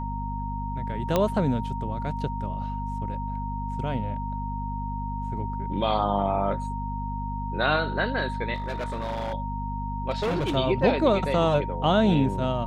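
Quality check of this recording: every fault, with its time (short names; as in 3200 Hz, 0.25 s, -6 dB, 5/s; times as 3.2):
hum 50 Hz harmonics 5 -32 dBFS
tone 930 Hz -33 dBFS
1.16 pop -9 dBFS
8.54–9.34 clipped -26.5 dBFS
10.1–10.56 clipped -22.5 dBFS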